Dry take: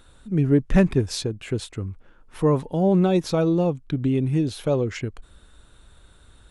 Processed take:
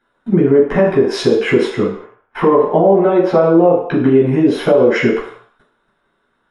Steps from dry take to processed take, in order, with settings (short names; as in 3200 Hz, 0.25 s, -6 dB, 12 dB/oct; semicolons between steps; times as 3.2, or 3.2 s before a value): dynamic EQ 540 Hz, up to +6 dB, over -34 dBFS, Q 0.79; compressor 12:1, threshold -25 dBFS, peak gain reduction 17 dB; gate -43 dBFS, range -26 dB; 1.84–3.98 tone controls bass -3 dB, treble -12 dB; reverb RT60 0.65 s, pre-delay 9 ms, DRR -7 dB; maximiser +3.5 dB; gain -1 dB